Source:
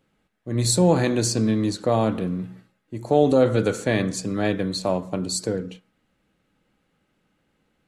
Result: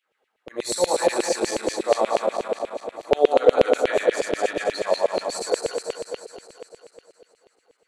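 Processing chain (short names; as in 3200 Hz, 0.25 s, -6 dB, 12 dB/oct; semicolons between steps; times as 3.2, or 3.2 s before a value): regenerating reverse delay 0.108 s, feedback 80%, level -1.5 dB; bell 400 Hz +9 dB 1.8 oct; LFO high-pass saw down 8.3 Hz 460–2900 Hz; gain -7.5 dB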